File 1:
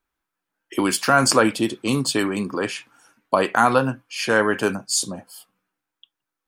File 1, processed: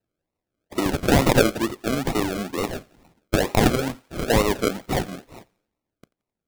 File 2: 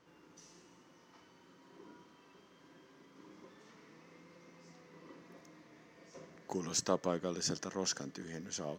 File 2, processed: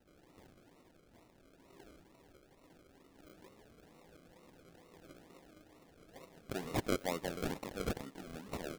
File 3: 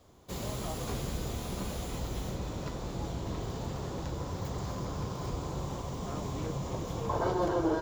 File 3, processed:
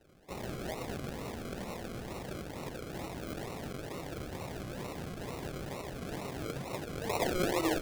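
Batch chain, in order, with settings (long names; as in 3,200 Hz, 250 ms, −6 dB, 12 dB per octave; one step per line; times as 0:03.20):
high-pass filter 280 Hz 6 dB per octave
sample-and-hold swept by an LFO 38×, swing 60% 2.2 Hz
feedback echo with a high-pass in the loop 87 ms, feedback 42%, high-pass 550 Hz, level −23.5 dB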